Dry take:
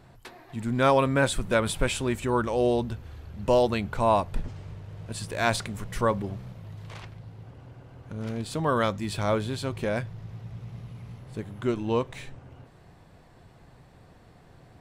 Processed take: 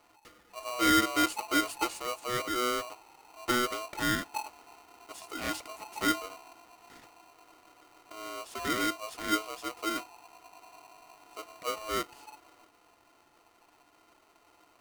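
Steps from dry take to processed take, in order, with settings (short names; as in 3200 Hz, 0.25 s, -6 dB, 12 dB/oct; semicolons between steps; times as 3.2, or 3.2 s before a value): fixed phaser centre 470 Hz, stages 8; small resonant body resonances 330/550/3700 Hz, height 11 dB; polarity switched at an audio rate 860 Hz; gain -8.5 dB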